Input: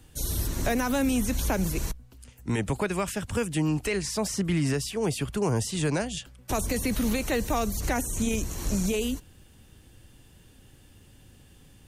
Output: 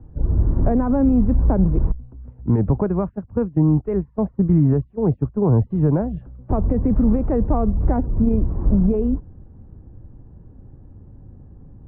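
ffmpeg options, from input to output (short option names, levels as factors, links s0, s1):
-filter_complex "[0:a]asplit=3[s0][s1][s2];[s0]afade=t=out:st=3:d=0.02[s3];[s1]agate=range=0.126:threshold=0.0398:ratio=16:detection=peak,afade=t=in:st=3:d=0.02,afade=t=out:st=5.7:d=0.02[s4];[s2]afade=t=in:st=5.7:d=0.02[s5];[s3][s4][s5]amix=inputs=3:normalize=0,lowpass=f=1100:w=0.5412,lowpass=f=1100:w=1.3066,lowshelf=f=360:g=11,volume=1.26"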